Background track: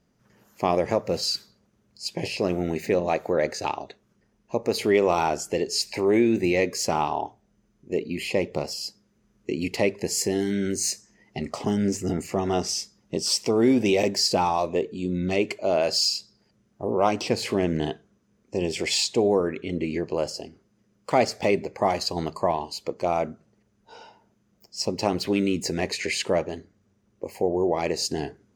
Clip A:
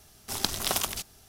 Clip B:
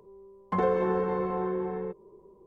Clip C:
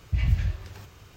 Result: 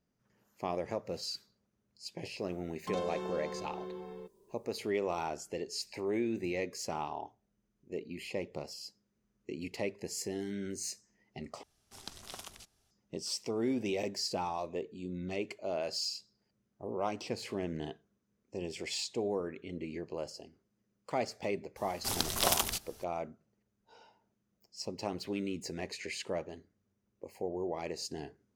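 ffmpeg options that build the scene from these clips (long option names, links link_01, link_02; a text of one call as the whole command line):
ffmpeg -i bed.wav -i cue0.wav -i cue1.wav -filter_complex "[1:a]asplit=2[link_01][link_02];[0:a]volume=-13dB[link_03];[2:a]aexciter=amount=13.2:drive=3.8:freq=2800[link_04];[link_01]lowpass=10000[link_05];[link_02]alimiter=limit=-8dB:level=0:latency=1:release=206[link_06];[link_03]asplit=2[link_07][link_08];[link_07]atrim=end=11.634[link_09];[link_05]atrim=end=1.28,asetpts=PTS-STARTPTS,volume=-17.5dB[link_10];[link_08]atrim=start=12.906[link_11];[link_04]atrim=end=2.46,asetpts=PTS-STARTPTS,volume=-12.5dB,afade=type=in:duration=0.004:curve=hsin,afade=type=out:start_time=2.456:duration=0.004:curve=hsin,adelay=2350[link_12];[link_06]atrim=end=1.28,asetpts=PTS-STARTPTS,volume=-1dB,afade=type=in:duration=0.004:curve=hsin,afade=type=out:start_time=1.276:duration=0.004:curve=hsin,adelay=21760[link_13];[link_09][link_10]acrossfade=duration=0.004:curve1=hsin:curve2=hsin[link_14];[link_14][link_11]acrossfade=duration=0.004:curve1=hsin:curve2=hsin[link_15];[link_15][link_12][link_13]amix=inputs=3:normalize=0" out.wav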